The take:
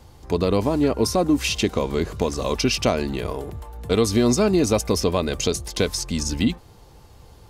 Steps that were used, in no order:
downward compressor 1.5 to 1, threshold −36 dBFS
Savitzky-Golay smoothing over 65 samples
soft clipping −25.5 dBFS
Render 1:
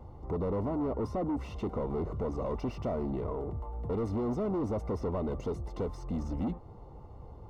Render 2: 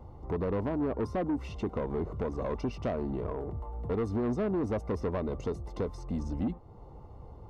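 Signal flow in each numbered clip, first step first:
soft clipping, then downward compressor, then Savitzky-Golay smoothing
downward compressor, then Savitzky-Golay smoothing, then soft clipping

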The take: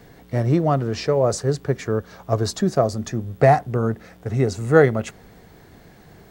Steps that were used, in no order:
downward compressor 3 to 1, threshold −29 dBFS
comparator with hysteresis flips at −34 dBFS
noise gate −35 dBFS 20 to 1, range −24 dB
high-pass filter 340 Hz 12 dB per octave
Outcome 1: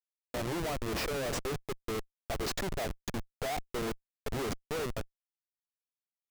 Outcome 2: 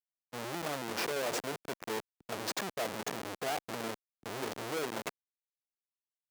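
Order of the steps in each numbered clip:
high-pass filter, then downward compressor, then noise gate, then comparator with hysteresis
downward compressor, then comparator with hysteresis, then noise gate, then high-pass filter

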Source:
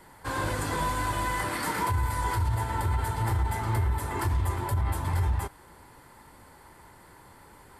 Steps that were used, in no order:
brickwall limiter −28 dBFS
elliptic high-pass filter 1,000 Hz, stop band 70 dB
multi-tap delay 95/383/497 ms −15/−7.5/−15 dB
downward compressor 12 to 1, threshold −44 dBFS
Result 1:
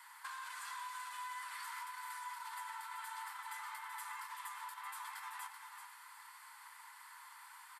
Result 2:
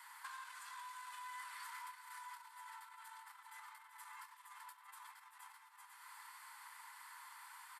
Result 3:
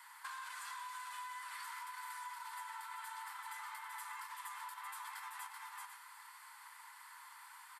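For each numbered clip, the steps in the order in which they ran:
elliptic high-pass filter, then brickwall limiter, then downward compressor, then multi-tap delay
multi-tap delay, then brickwall limiter, then downward compressor, then elliptic high-pass filter
elliptic high-pass filter, then brickwall limiter, then multi-tap delay, then downward compressor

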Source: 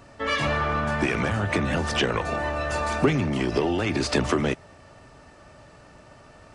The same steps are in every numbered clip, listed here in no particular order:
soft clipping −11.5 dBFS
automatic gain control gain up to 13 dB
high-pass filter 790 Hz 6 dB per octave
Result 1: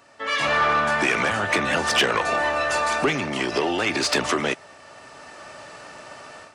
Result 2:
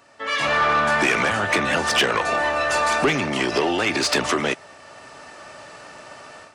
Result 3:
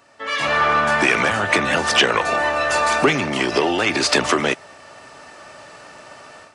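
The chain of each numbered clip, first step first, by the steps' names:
automatic gain control, then high-pass filter, then soft clipping
high-pass filter, then automatic gain control, then soft clipping
high-pass filter, then soft clipping, then automatic gain control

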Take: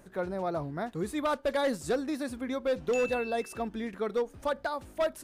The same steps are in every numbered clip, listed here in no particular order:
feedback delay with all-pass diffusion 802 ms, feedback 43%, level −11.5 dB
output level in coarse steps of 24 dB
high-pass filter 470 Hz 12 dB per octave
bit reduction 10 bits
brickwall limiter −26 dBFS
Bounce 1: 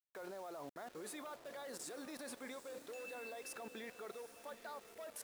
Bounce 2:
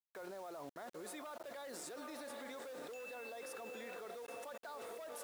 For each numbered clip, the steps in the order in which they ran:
brickwall limiter, then high-pass filter, then output level in coarse steps, then feedback delay with all-pass diffusion, then bit reduction
feedback delay with all-pass diffusion, then brickwall limiter, then high-pass filter, then output level in coarse steps, then bit reduction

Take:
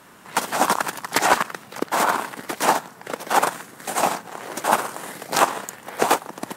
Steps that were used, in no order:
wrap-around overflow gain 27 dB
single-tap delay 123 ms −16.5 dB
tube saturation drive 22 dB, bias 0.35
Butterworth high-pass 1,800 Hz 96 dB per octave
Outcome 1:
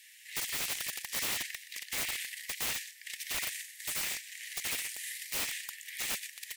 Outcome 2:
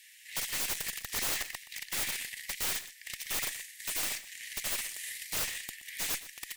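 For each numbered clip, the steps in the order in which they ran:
single-tap delay, then tube saturation, then Butterworth high-pass, then wrap-around overflow
Butterworth high-pass, then tube saturation, then wrap-around overflow, then single-tap delay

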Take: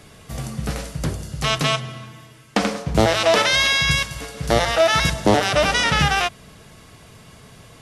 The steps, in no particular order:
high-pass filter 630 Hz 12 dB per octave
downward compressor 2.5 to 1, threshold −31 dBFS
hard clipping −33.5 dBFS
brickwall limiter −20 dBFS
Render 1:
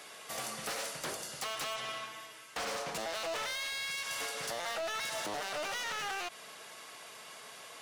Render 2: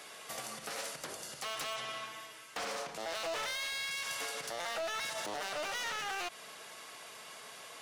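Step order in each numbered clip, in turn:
high-pass filter, then brickwall limiter, then downward compressor, then hard clipping
brickwall limiter, then downward compressor, then high-pass filter, then hard clipping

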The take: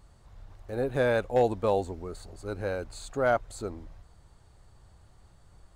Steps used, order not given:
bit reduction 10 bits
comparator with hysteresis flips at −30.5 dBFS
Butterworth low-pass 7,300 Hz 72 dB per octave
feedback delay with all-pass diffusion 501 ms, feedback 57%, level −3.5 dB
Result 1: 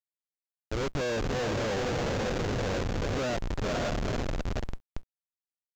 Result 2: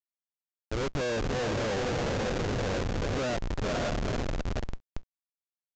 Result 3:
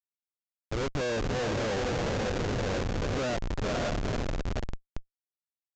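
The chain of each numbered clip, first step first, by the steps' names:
feedback delay with all-pass diffusion, then comparator with hysteresis, then Butterworth low-pass, then bit reduction
feedback delay with all-pass diffusion, then comparator with hysteresis, then bit reduction, then Butterworth low-pass
feedback delay with all-pass diffusion, then bit reduction, then comparator with hysteresis, then Butterworth low-pass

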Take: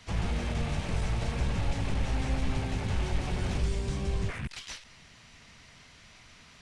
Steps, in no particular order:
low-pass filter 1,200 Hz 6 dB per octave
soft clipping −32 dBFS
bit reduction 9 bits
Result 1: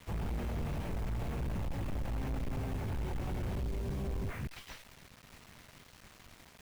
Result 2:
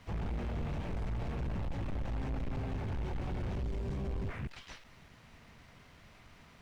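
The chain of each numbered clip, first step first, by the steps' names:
low-pass filter, then soft clipping, then bit reduction
soft clipping, then bit reduction, then low-pass filter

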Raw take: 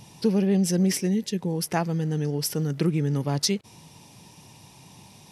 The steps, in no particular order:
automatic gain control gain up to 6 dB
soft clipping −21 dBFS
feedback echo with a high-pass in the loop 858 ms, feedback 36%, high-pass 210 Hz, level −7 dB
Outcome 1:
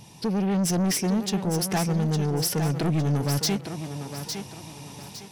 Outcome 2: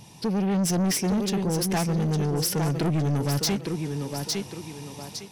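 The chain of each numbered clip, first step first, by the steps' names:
automatic gain control, then soft clipping, then feedback echo with a high-pass in the loop
feedback echo with a high-pass in the loop, then automatic gain control, then soft clipping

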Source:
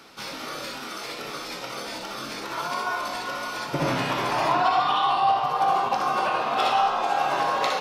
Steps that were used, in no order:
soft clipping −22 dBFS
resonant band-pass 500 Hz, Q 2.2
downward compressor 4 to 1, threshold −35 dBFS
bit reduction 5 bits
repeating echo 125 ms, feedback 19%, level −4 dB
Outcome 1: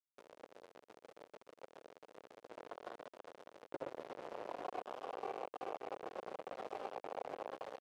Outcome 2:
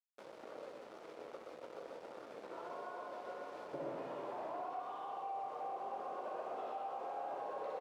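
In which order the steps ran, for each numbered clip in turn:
repeating echo, then downward compressor, then soft clipping, then bit reduction, then resonant band-pass
bit reduction, then soft clipping, then repeating echo, then downward compressor, then resonant band-pass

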